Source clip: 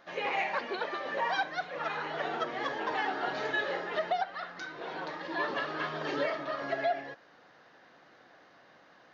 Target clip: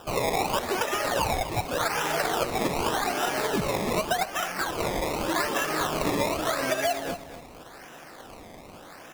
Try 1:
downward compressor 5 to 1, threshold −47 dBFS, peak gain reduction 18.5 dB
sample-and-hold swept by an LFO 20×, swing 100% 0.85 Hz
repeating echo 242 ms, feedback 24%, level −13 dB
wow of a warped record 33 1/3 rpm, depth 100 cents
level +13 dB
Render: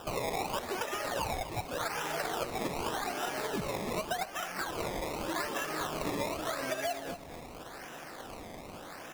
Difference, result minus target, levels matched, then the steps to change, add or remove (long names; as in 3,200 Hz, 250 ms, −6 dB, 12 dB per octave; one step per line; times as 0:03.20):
downward compressor: peak gain reduction +8 dB
change: downward compressor 5 to 1, threshold −37 dBFS, peak gain reduction 10.5 dB